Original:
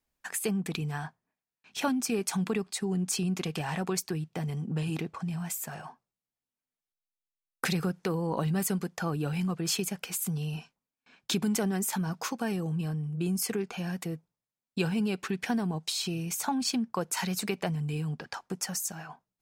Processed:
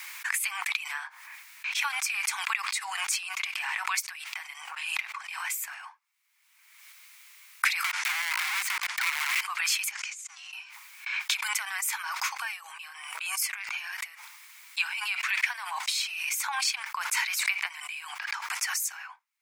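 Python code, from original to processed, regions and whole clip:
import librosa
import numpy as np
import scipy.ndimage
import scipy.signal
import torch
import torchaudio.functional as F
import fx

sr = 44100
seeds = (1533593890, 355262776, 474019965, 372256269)

y = fx.chain(x, sr, fx.lowpass(hz=8000.0, slope=12),
    fx.overflow_wrap(gain_db=28.0),
    fx.band_squash(depth_pct=40), at=(7.84, 9.41))
y = fx.chain(y, sr, fx.law_mismatch(coded='mu'),
    fx.over_compress(threshold_db=-36.0, ratio=-0.5),
    fx.ladder_lowpass(hz=7400.0, resonance_pct=65), at=(9.91, 10.53))
y = scipy.signal.sosfilt(scipy.signal.butter(8, 940.0, 'highpass', fs=sr, output='sos'), y)
y = fx.peak_eq(y, sr, hz=2200.0, db=12.0, octaves=0.46)
y = fx.pre_swell(y, sr, db_per_s=37.0)
y = F.gain(torch.from_numpy(y), 2.0).numpy()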